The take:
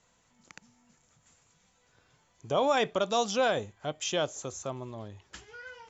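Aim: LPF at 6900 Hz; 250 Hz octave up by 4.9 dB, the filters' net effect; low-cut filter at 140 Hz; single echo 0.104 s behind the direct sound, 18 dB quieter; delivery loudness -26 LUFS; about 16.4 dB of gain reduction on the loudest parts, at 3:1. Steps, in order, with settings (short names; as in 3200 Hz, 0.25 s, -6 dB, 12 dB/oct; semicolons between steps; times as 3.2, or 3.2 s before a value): HPF 140 Hz; LPF 6900 Hz; bell 250 Hz +6.5 dB; compressor 3:1, threshold -44 dBFS; echo 0.104 s -18 dB; gain +19 dB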